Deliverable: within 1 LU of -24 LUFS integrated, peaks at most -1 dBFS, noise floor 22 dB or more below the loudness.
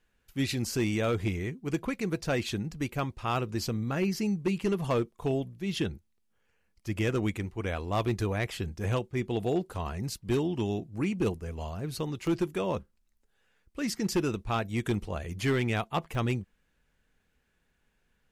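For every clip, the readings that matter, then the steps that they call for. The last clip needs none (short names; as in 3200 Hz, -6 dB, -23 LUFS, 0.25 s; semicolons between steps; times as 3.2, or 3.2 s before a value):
clipped 0.7%; flat tops at -21.0 dBFS; dropouts 2; longest dropout 1.3 ms; loudness -31.5 LUFS; peak -21.0 dBFS; loudness target -24.0 LUFS
-> clip repair -21 dBFS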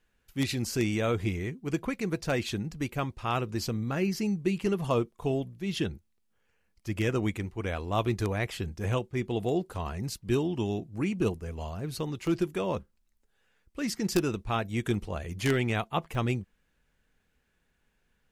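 clipped 0.0%; dropouts 2; longest dropout 1.3 ms
-> interpolate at 12.27/16.15, 1.3 ms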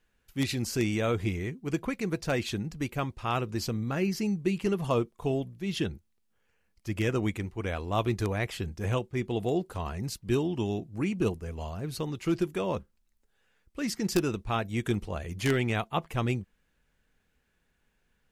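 dropouts 0; loudness -31.0 LUFS; peak -12.0 dBFS; loudness target -24.0 LUFS
-> gain +7 dB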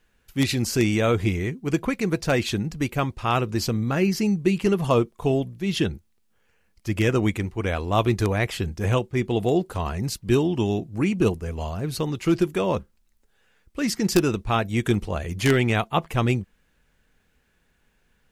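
loudness -24.0 LUFS; peak -5.0 dBFS; noise floor -66 dBFS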